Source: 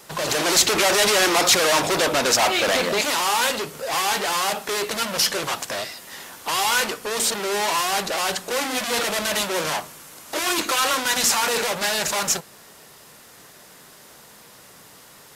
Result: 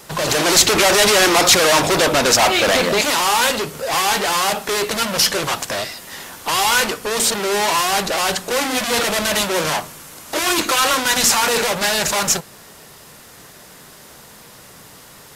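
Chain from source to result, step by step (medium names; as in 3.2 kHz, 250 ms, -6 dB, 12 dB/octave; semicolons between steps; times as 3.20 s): bass shelf 140 Hz +7.5 dB; trim +4.5 dB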